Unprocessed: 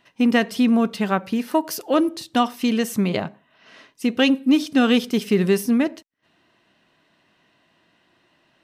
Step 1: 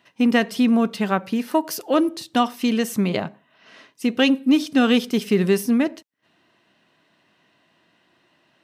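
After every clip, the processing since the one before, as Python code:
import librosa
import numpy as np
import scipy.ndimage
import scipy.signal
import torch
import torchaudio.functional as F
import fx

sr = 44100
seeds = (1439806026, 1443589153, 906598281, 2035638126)

y = scipy.signal.sosfilt(scipy.signal.butter(2, 90.0, 'highpass', fs=sr, output='sos'), x)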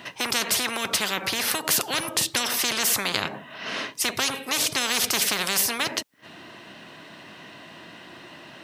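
y = fx.spectral_comp(x, sr, ratio=10.0)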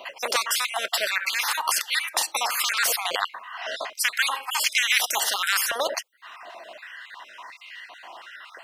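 y = fx.spec_dropout(x, sr, seeds[0], share_pct=38)
y = fx.filter_held_highpass(y, sr, hz=2.8, low_hz=560.0, high_hz=2000.0)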